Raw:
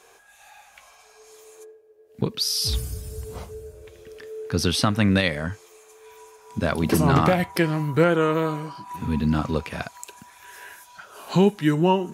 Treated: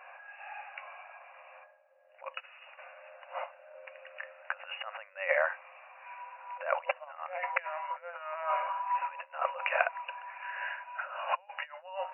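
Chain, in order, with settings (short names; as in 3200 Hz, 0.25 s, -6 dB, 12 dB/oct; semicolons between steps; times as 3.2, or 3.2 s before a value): negative-ratio compressor -27 dBFS, ratio -0.5; FFT band-pass 510–2900 Hz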